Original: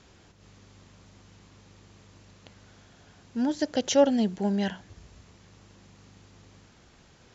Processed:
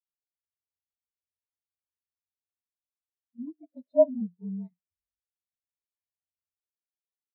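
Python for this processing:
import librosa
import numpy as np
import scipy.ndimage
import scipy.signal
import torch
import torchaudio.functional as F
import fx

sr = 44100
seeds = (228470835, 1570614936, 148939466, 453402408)

y = fx.partial_stretch(x, sr, pct=111)
y = fx.env_lowpass(y, sr, base_hz=460.0, full_db=-24.0)
y = fx.spectral_expand(y, sr, expansion=2.5)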